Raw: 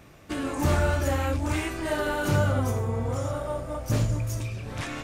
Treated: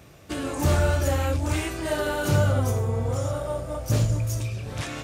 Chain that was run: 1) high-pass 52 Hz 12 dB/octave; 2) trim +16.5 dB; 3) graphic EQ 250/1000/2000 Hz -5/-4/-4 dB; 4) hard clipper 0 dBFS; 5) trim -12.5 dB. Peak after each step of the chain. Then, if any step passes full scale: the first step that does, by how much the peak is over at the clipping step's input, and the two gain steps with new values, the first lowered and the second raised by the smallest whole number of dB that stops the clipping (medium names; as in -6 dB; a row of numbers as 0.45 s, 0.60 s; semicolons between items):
-11.0 dBFS, +5.5 dBFS, +3.0 dBFS, 0.0 dBFS, -12.5 dBFS; step 2, 3.0 dB; step 2 +13.5 dB, step 5 -9.5 dB